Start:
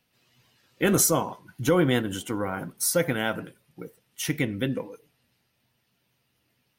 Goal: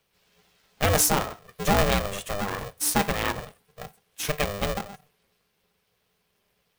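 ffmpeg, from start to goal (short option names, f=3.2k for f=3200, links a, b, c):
-af "aeval=exprs='0.376*(cos(1*acos(clip(val(0)/0.376,-1,1)))-cos(1*PI/2))+0.0133*(cos(8*acos(clip(val(0)/0.376,-1,1)))-cos(8*PI/2))':c=same,aeval=exprs='val(0)*sgn(sin(2*PI*300*n/s))':c=same"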